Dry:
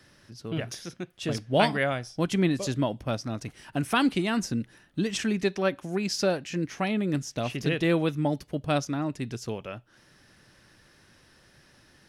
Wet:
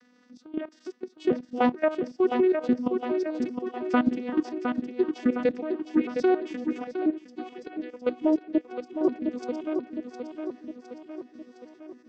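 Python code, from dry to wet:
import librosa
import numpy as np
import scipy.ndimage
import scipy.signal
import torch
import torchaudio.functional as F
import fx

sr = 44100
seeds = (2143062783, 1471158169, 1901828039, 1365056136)

y = fx.vocoder_arp(x, sr, chord='major triad', root=59, every_ms=432)
y = fx.env_lowpass_down(y, sr, base_hz=2800.0, full_db=-25.0)
y = fx.level_steps(y, sr, step_db=14)
y = fx.step_gate(y, sr, bpm=131, pattern='xxxx.x.x.', floor_db=-12.0, edge_ms=4.5)
y = fx.echo_feedback(y, sr, ms=711, feedback_pct=56, wet_db=-6)
y = fx.upward_expand(y, sr, threshold_db=-47.0, expansion=1.5, at=(6.84, 9.01))
y = y * librosa.db_to_amplitude(8.5)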